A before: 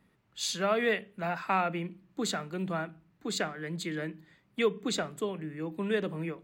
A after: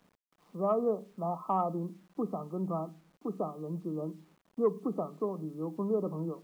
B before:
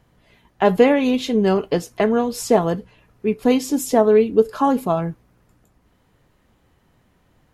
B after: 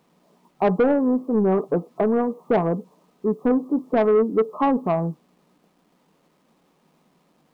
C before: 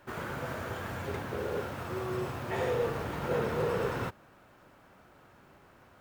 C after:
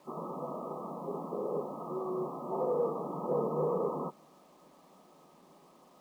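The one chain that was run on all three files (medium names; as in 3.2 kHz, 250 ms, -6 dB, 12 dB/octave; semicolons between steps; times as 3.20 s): FFT band-pass 150–1300 Hz; bit crusher 11-bit; saturation -12.5 dBFS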